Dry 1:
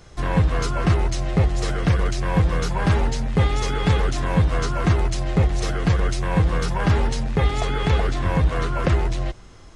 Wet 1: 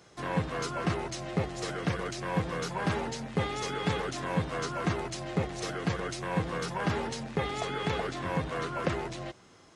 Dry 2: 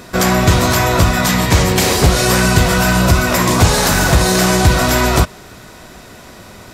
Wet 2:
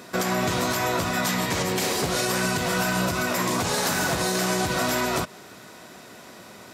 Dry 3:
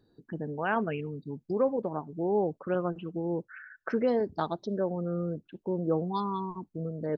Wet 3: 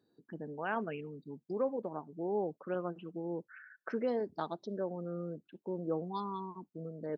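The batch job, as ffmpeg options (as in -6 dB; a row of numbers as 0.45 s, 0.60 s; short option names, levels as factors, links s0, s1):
-af "highpass=170,alimiter=limit=0.398:level=0:latency=1:release=160,volume=0.473"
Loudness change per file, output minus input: -11.0 LU, -11.5 LU, -7.0 LU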